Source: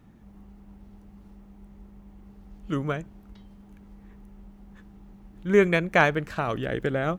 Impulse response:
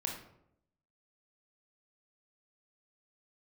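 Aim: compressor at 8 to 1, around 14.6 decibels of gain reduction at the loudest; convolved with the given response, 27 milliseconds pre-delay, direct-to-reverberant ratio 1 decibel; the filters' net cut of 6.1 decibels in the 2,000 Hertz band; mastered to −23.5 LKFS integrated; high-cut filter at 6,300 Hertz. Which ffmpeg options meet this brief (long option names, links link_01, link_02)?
-filter_complex "[0:a]lowpass=6300,equalizer=frequency=2000:width_type=o:gain=-8,acompressor=threshold=-29dB:ratio=8,asplit=2[link_01][link_02];[1:a]atrim=start_sample=2205,adelay=27[link_03];[link_02][link_03]afir=irnorm=-1:irlink=0,volume=-3dB[link_04];[link_01][link_04]amix=inputs=2:normalize=0,volume=9dB"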